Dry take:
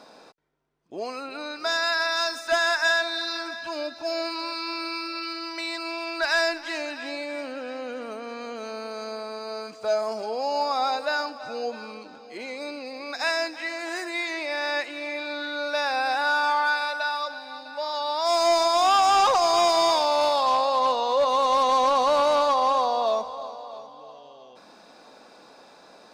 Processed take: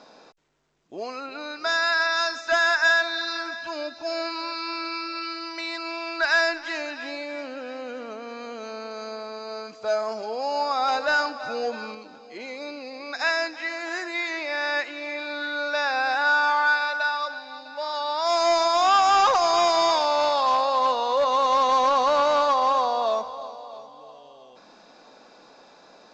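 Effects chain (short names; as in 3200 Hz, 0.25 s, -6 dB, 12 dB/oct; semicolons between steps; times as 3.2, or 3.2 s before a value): 10.88–11.95 sample leveller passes 1; dynamic EQ 1500 Hz, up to +5 dB, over -39 dBFS, Q 1.6; gain -1 dB; A-law 128 kbps 16000 Hz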